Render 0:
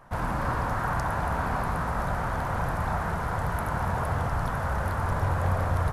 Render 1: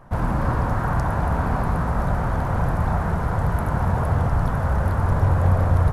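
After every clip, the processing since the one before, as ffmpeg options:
-af "tiltshelf=f=660:g=5,volume=1.58"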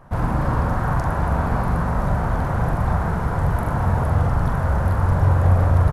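-filter_complex "[0:a]asplit=2[s0][s1];[s1]adelay=43,volume=0.501[s2];[s0][s2]amix=inputs=2:normalize=0"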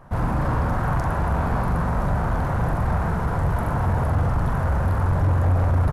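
-af "asoftclip=type=tanh:threshold=0.2"

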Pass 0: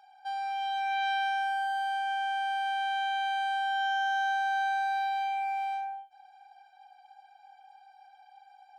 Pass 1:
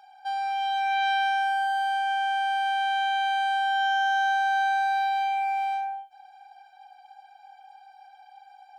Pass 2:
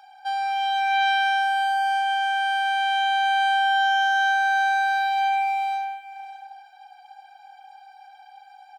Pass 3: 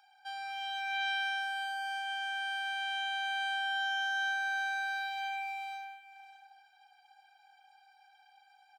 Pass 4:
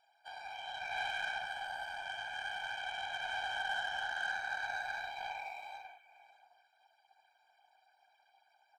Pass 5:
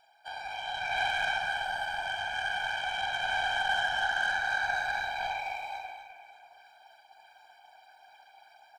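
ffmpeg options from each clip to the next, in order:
-af "bandreject=f=1900:w=12,volume=1.78"
-af "highpass=690,aecho=1:1:599:0.168,volume=1.78"
-af "highpass=1200,volume=0.376"
-filter_complex "[0:a]acrossover=split=3500[s0][s1];[s1]acompressor=threshold=0.00251:ratio=4:attack=1:release=60[s2];[s0][s2]amix=inputs=2:normalize=0,afftfilt=real='hypot(re,im)*cos(2*PI*random(0))':imag='hypot(re,im)*sin(2*PI*random(1))':win_size=512:overlap=0.75,aeval=exprs='0.0398*(cos(1*acos(clip(val(0)/0.0398,-1,1)))-cos(1*PI/2))+0.00224*(cos(7*acos(clip(val(0)/0.0398,-1,1)))-cos(7*PI/2))':c=same,volume=1.33"
-af "areverse,acompressor=mode=upward:threshold=0.00141:ratio=2.5,areverse,lowshelf=f=200:g=5.5,aecho=1:1:43.73|253.6:0.355|0.398,volume=2.24"

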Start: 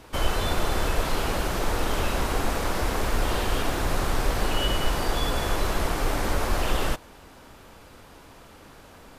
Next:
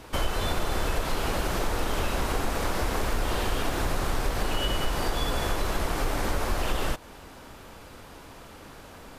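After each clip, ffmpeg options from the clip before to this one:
-af "acompressor=threshold=0.0447:ratio=2.5,volume=1.33"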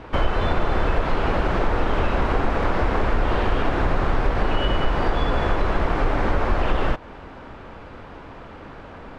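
-af "lowpass=2200,volume=2.24"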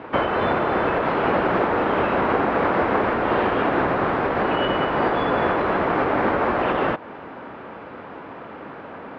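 -af "highpass=190,lowpass=2500,volume=1.68"

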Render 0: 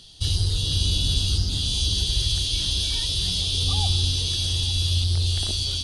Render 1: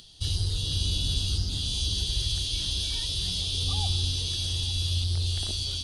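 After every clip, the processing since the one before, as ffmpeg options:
-af "acompressor=mode=upward:threshold=0.00631:ratio=2.5,volume=0.562"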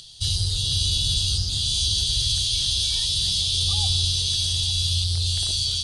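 -af "equalizer=f=125:t=o:w=1:g=6,equalizer=f=250:t=o:w=1:g=-8,equalizer=f=4000:t=o:w=1:g=6,equalizer=f=8000:t=o:w=1:g=10"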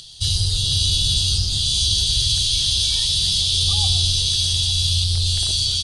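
-filter_complex "[0:a]asplit=5[s0][s1][s2][s3][s4];[s1]adelay=126,afreqshift=-72,volume=0.251[s5];[s2]adelay=252,afreqshift=-144,volume=0.0933[s6];[s3]adelay=378,afreqshift=-216,volume=0.0343[s7];[s4]adelay=504,afreqshift=-288,volume=0.0127[s8];[s0][s5][s6][s7][s8]amix=inputs=5:normalize=0,volume=1.5"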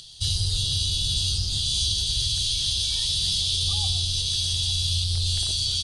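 -af "alimiter=limit=0.316:level=0:latency=1:release=274,volume=0.631"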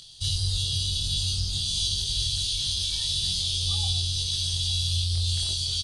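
-filter_complex "[0:a]asplit=2[s0][s1];[s1]adelay=22,volume=0.708[s2];[s0][s2]amix=inputs=2:normalize=0,volume=0.596"

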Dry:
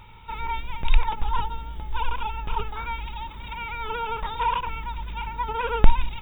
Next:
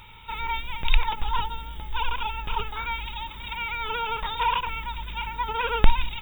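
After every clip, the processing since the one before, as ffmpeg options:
-af "highshelf=f=2000:g=12,volume=0.75"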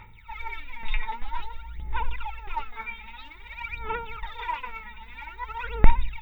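-filter_complex "[0:a]equalizer=f=2000:t=o:w=0.33:g=11,equalizer=f=3150:t=o:w=0.33:g=-10,equalizer=f=8000:t=o:w=0.33:g=-6,aphaser=in_gain=1:out_gain=1:delay=4.7:decay=0.79:speed=0.51:type=sinusoidal,acrossover=split=6500[s0][s1];[s1]acompressor=threshold=0.002:ratio=4:attack=1:release=60[s2];[s0][s2]amix=inputs=2:normalize=0,volume=0.266"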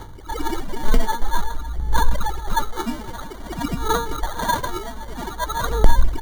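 -filter_complex "[0:a]acrossover=split=350|900[s0][s1][s2];[s2]acrusher=samples=17:mix=1:aa=0.000001[s3];[s0][s1][s3]amix=inputs=3:normalize=0,alimiter=level_in=3.98:limit=0.891:release=50:level=0:latency=1,volume=0.891"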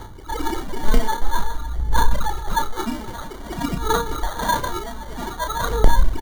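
-filter_complex "[0:a]asplit=2[s0][s1];[s1]adelay=32,volume=0.447[s2];[s0][s2]amix=inputs=2:normalize=0"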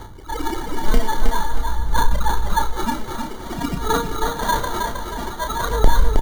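-af "aecho=1:1:316|632|948|1264|1580:0.562|0.208|0.077|0.0285|0.0105"

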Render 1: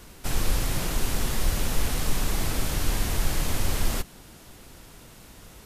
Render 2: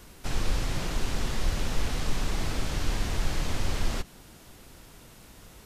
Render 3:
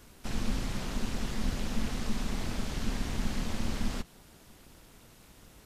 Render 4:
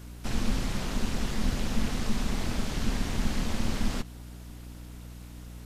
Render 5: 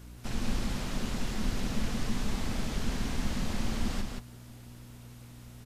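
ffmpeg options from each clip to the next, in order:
-filter_complex "[0:a]acrossover=split=7300[s0][s1];[s1]acompressor=threshold=0.00251:ratio=4:attack=1:release=60[s2];[s0][s2]amix=inputs=2:normalize=0,volume=0.75"
-af "tremolo=f=220:d=0.667,volume=0.794"
-af "aeval=exprs='val(0)+0.00501*(sin(2*PI*60*n/s)+sin(2*PI*2*60*n/s)/2+sin(2*PI*3*60*n/s)/3+sin(2*PI*4*60*n/s)/4+sin(2*PI*5*60*n/s)/5)':c=same,volume=1.5"
-af "aecho=1:1:175:0.631,volume=0.631"

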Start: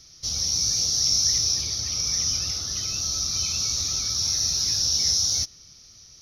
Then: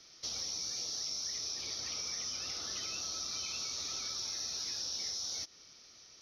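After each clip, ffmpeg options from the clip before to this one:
-filter_complex "[0:a]acrossover=split=260 4000:gain=0.112 1 0.224[s0][s1][s2];[s0][s1][s2]amix=inputs=3:normalize=0,acompressor=threshold=0.0158:ratio=6"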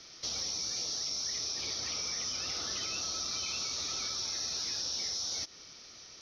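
-filter_complex "[0:a]highshelf=f=9900:g=-11,asplit=2[s0][s1];[s1]alimiter=level_in=4.47:limit=0.0631:level=0:latency=1,volume=0.224,volume=1.41[s2];[s0][s2]amix=inputs=2:normalize=0"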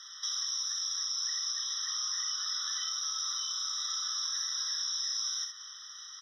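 -filter_complex "[0:a]aecho=1:1:45|66:0.376|0.398,acrossover=split=1400|3000[s0][s1][s2];[s0]acompressor=threshold=0.00316:ratio=4[s3];[s1]acompressor=threshold=0.00282:ratio=4[s4];[s2]acompressor=threshold=0.0141:ratio=4[s5];[s3][s4][s5]amix=inputs=3:normalize=0,afftfilt=real='re*eq(mod(floor(b*sr/1024/1000),2),1)':imag='im*eq(mod(floor(b*sr/1024/1000),2),1)':win_size=1024:overlap=0.75,volume=2"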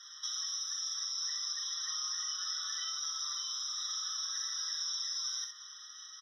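-filter_complex "[0:a]asplit=2[s0][s1];[s1]adelay=6,afreqshift=0.54[s2];[s0][s2]amix=inputs=2:normalize=1"

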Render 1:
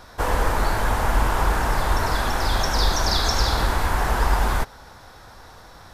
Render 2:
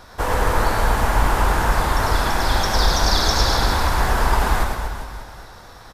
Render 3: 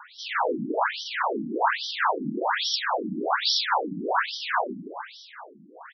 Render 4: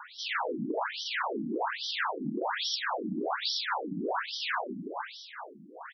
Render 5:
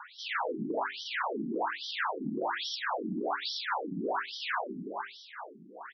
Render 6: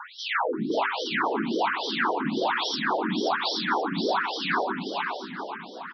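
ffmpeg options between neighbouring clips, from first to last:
-af "aecho=1:1:110|242|400.4|590.5|818.6:0.631|0.398|0.251|0.158|0.1,volume=1.12"
-af "alimiter=limit=0.282:level=0:latency=1:release=18,afftfilt=real='re*between(b*sr/1024,230*pow(4300/230,0.5+0.5*sin(2*PI*1.2*pts/sr))/1.41,230*pow(4300/230,0.5+0.5*sin(2*PI*1.2*pts/sr))*1.41)':imag='im*between(b*sr/1024,230*pow(4300/230,0.5+0.5*sin(2*PI*1.2*pts/sr))/1.41,230*pow(4300/230,0.5+0.5*sin(2*PI*1.2*pts/sr))*1.41)':win_size=1024:overlap=0.75,volume=1.68"
-af "acompressor=threshold=0.0355:ratio=6"
-af "highshelf=f=5100:g=-11,bandreject=f=50:t=h:w=6,bandreject=f=100:t=h:w=6,bandreject=f=150:t=h:w=6,bandreject=f=200:t=h:w=6,bandreject=f=250:t=h:w=6,bandreject=f=300:t=h:w=6,bandreject=f=350:t=h:w=6,bandreject=f=400:t=h:w=6"
-af "aecho=1:1:530|1060|1590:0.501|0.12|0.0289,volume=2.11"

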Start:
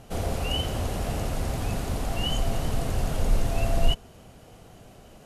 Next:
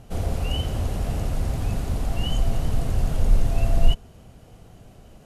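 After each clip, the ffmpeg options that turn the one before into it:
-af "lowshelf=f=200:g=8.5,volume=0.708"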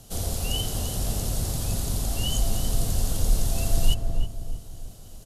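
-filter_complex "[0:a]acrossover=split=130|1300[s0][s1][s2];[s2]aexciter=amount=5.8:drive=3.5:freq=3300[s3];[s0][s1][s3]amix=inputs=3:normalize=0,asplit=2[s4][s5];[s5]adelay=320,lowpass=f=940:p=1,volume=0.631,asplit=2[s6][s7];[s7]adelay=320,lowpass=f=940:p=1,volume=0.44,asplit=2[s8][s9];[s9]adelay=320,lowpass=f=940:p=1,volume=0.44,asplit=2[s10][s11];[s11]adelay=320,lowpass=f=940:p=1,volume=0.44,asplit=2[s12][s13];[s13]adelay=320,lowpass=f=940:p=1,volume=0.44,asplit=2[s14][s15];[s15]adelay=320,lowpass=f=940:p=1,volume=0.44[s16];[s4][s6][s8][s10][s12][s14][s16]amix=inputs=7:normalize=0,volume=0.631"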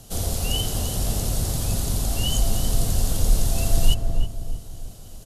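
-af "volume=1.5" -ar 44100 -c:a libmp3lame -b:a 112k

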